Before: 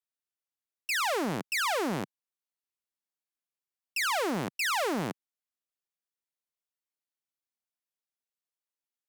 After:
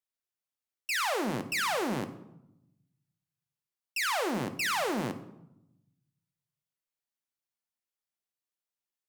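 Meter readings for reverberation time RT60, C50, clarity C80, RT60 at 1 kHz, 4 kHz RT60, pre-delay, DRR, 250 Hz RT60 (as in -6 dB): 0.85 s, 13.0 dB, 15.0 dB, 0.85 s, 0.55 s, 8 ms, 8.5 dB, 1.3 s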